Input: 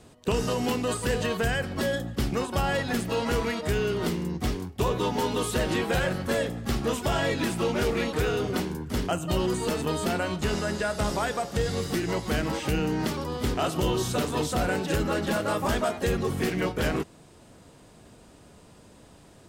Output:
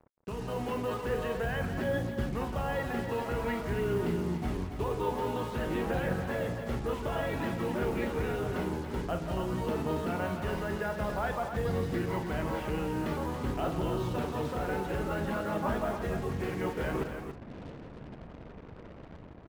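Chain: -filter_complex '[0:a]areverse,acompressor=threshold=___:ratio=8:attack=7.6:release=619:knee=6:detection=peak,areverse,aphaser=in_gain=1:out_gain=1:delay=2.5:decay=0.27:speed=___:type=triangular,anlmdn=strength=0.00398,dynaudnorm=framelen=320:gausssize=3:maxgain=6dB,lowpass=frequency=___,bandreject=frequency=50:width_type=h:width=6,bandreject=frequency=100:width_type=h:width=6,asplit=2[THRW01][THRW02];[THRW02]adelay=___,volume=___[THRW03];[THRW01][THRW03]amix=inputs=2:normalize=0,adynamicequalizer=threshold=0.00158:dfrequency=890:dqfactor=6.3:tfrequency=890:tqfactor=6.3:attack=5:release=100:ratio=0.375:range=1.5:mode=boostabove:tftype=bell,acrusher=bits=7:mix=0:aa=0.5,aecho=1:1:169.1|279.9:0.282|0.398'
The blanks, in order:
-35dB, 0.51, 2.2k, 42, -11dB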